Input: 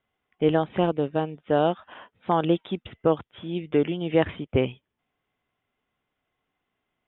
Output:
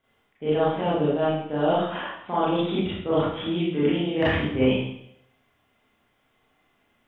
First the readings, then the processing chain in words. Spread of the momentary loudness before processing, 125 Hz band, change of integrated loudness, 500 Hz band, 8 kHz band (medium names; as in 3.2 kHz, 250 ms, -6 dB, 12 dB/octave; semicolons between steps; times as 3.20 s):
9 LU, +1.0 dB, +1.0 dB, +0.5 dB, no reading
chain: reverse; compression 16:1, threshold -30 dBFS, peak gain reduction 16.5 dB; reverse; Schroeder reverb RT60 0.72 s, combs from 27 ms, DRR -9.5 dB; trim +3 dB